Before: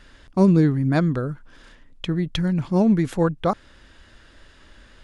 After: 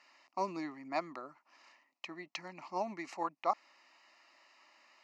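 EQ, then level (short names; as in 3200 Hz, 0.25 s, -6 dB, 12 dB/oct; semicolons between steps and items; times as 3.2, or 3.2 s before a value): HPF 410 Hz 24 dB/oct; air absorption 52 m; fixed phaser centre 2300 Hz, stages 8; -4.5 dB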